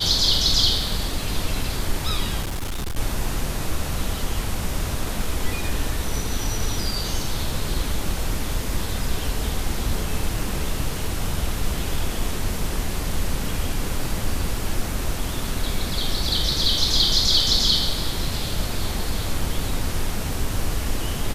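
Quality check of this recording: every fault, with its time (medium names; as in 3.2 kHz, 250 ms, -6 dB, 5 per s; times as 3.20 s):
2.42–2.98 s: clipped -23.5 dBFS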